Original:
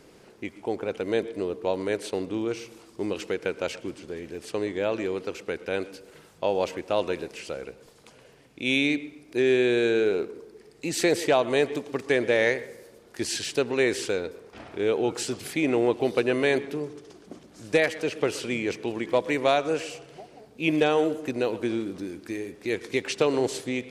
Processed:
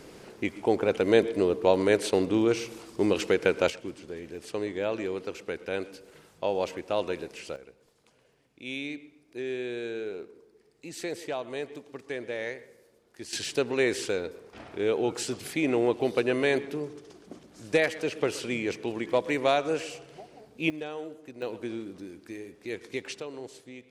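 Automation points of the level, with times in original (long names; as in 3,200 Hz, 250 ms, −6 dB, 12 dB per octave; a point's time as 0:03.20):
+5 dB
from 0:03.70 −3 dB
from 0:07.56 −12 dB
from 0:13.33 −2 dB
from 0:20.70 −15 dB
from 0:21.42 −7.5 dB
from 0:23.20 −16 dB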